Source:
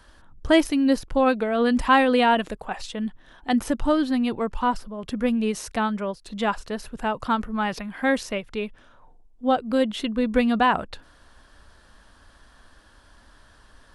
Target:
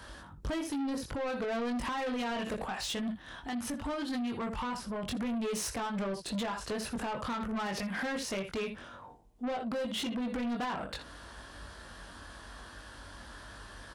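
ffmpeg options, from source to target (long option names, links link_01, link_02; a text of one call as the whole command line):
ffmpeg -i in.wav -filter_complex "[0:a]aecho=1:1:21|62|80:0.668|0.133|0.158,acompressor=threshold=-26dB:ratio=6,highpass=frequency=44:width=0.5412,highpass=frequency=44:width=1.3066,alimiter=level_in=1dB:limit=-24dB:level=0:latency=1:release=192,volume=-1dB,asettb=1/sr,asplit=3[link_01][link_02][link_03];[link_01]atrim=end=2.654[link_04];[link_02]atrim=start=2.65:end=5.16,asetpts=PTS-STARTPTS,afade=type=in:duration=0.004:curve=qsin,afade=type=out:start_time=2.506:duration=0.004:curve=qsin,equalizer=frequency=440:width_type=o:width=1.4:gain=-5.5[link_05];[link_03]atrim=start=5.156[link_06];[link_04][link_05]acrossfade=duration=0.004:curve1=hsin:curve2=qsin[link_07];[link_07][link_06]acrossfade=duration=0.004:curve1=qsin:curve2=hsin,asoftclip=type=tanh:threshold=-36dB,volume=5dB" out.wav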